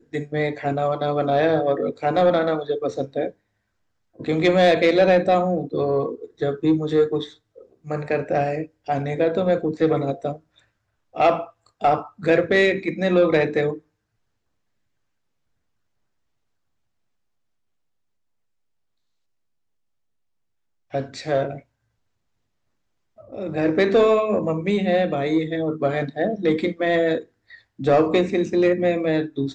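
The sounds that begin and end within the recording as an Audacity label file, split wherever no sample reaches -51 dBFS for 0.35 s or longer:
4.150000	10.640000	sound
11.130000	13.800000	sound
20.910000	21.620000	sound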